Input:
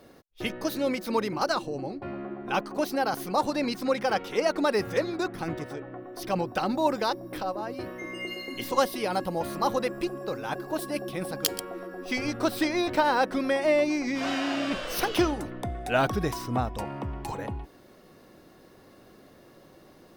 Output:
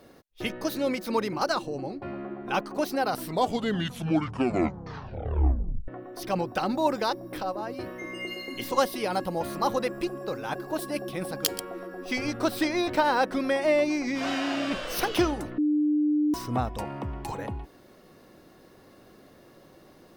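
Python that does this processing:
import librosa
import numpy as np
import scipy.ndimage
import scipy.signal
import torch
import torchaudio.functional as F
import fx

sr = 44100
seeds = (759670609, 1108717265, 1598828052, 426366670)

y = fx.edit(x, sr, fx.tape_stop(start_s=2.96, length_s=2.92),
    fx.bleep(start_s=15.58, length_s=0.76, hz=299.0, db=-20.5), tone=tone)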